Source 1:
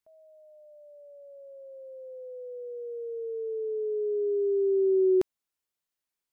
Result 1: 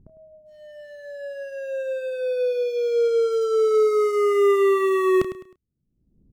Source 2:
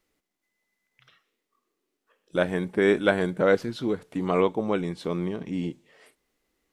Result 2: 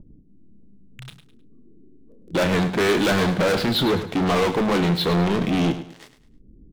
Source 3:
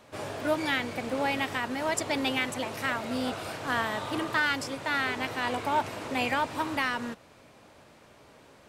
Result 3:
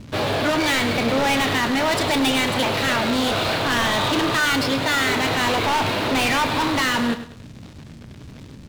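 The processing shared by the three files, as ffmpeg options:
-filter_complex "[0:a]highshelf=f=5300:t=q:w=3:g=-10,acrossover=split=240[s0][s1];[s0]acompressor=mode=upward:threshold=0.00251:ratio=2.5[s2];[s1]aeval=exprs='sgn(val(0))*max(abs(val(0))-0.00282,0)':c=same[s3];[s2][s3]amix=inputs=2:normalize=0,apsyclip=12.6,asoftclip=type=tanh:threshold=0.178,asplit=2[s4][s5];[s5]adelay=30,volume=0.251[s6];[s4][s6]amix=inputs=2:normalize=0,asplit=2[s7][s8];[s8]aecho=0:1:104|208|312:0.251|0.0804|0.0257[s9];[s7][s9]amix=inputs=2:normalize=0,volume=0.708"

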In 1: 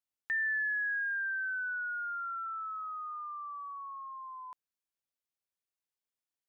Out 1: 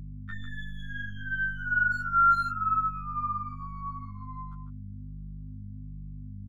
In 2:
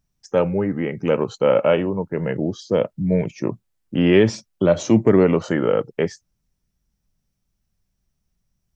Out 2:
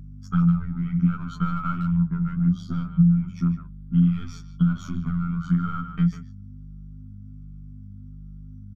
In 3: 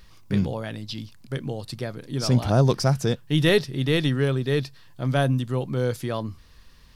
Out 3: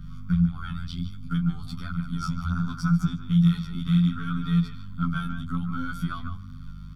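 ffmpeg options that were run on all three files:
-filter_complex "[0:a]aeval=exprs='if(lt(val(0),0),0.708*val(0),val(0))':c=same,aecho=1:1:0.9:0.75,asplit=2[s0][s1];[s1]volume=6.31,asoftclip=hard,volume=0.158,volume=0.631[s2];[s0][s2]amix=inputs=2:normalize=0,equalizer=f=460:t=o:w=0.62:g=-11,acrossover=split=190|3000[s3][s4][s5];[s4]acompressor=threshold=0.0631:ratio=2[s6];[s3][s6][s5]amix=inputs=3:normalize=0,afftfilt=real='hypot(re,im)*cos(PI*b)':imag='0':win_size=2048:overlap=0.75,acompressor=threshold=0.0501:ratio=12,firequalizer=gain_entry='entry(110,0);entry(180,14);entry(320,-11);entry(930,-11);entry(1400,13);entry(2000,-11);entry(3100,-3);entry(4900,-9);entry(8700,-9);entry(13000,-8)':delay=0.05:min_phase=1,asplit=2[s7][s8];[s8]adelay=150,highpass=300,lowpass=3400,asoftclip=type=hard:threshold=0.0841,volume=0.398[s9];[s7][s9]amix=inputs=2:normalize=0,aeval=exprs='val(0)+0.0158*(sin(2*PI*50*n/s)+sin(2*PI*2*50*n/s)/2+sin(2*PI*3*50*n/s)/3+sin(2*PI*4*50*n/s)/4+sin(2*PI*5*50*n/s)/5)':c=same,flanger=delay=6.4:depth=7.5:regen=12:speed=0.66:shape=sinusoidal,volume=1.33"

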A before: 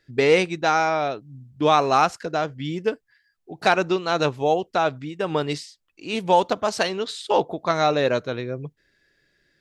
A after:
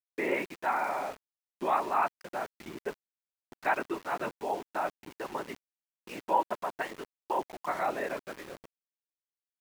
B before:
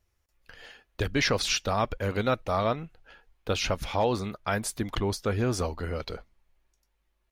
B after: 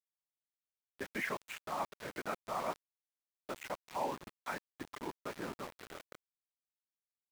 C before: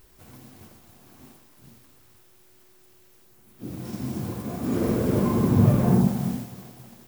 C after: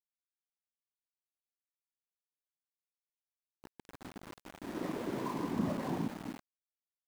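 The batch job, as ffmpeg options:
-af "afftfilt=real='hypot(re,im)*cos(2*PI*random(0))':imag='hypot(re,im)*sin(2*PI*random(1))':win_size=512:overlap=0.75,highpass=240,equalizer=f=480:t=q:w=4:g=-5,equalizer=f=960:t=q:w=4:g=6,equalizer=f=1900:t=q:w=4:g=6,lowpass=f=2500:w=0.5412,lowpass=f=2500:w=1.3066,aeval=exprs='val(0)*gte(abs(val(0)),0.0141)':c=same,volume=0.531"

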